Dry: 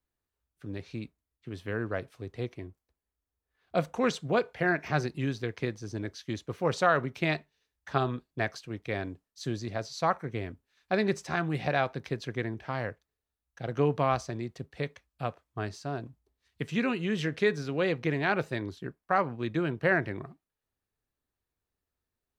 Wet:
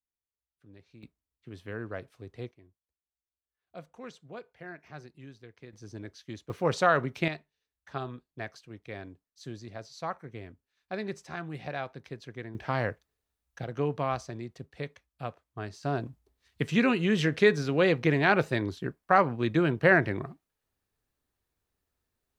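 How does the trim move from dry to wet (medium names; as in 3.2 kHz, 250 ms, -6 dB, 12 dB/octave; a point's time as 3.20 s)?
-16 dB
from 1.03 s -5 dB
from 2.51 s -17 dB
from 5.73 s -6.5 dB
from 6.50 s +1 dB
from 7.28 s -8 dB
from 12.55 s +4 dB
from 13.64 s -3.5 dB
from 15.83 s +4.5 dB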